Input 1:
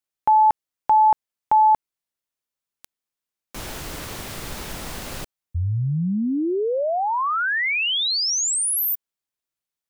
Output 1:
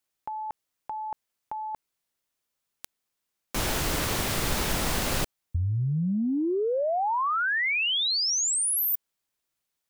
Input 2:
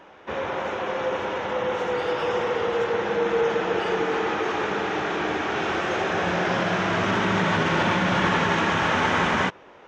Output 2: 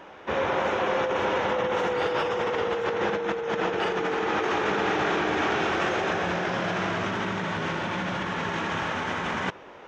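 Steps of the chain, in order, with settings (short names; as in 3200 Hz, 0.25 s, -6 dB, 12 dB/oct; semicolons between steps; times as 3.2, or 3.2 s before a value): negative-ratio compressor -27 dBFS, ratio -1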